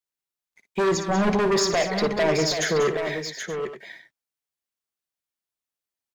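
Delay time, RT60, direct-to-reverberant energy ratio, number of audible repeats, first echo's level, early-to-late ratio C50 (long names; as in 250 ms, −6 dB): 57 ms, no reverb audible, no reverb audible, 5, −10.5 dB, no reverb audible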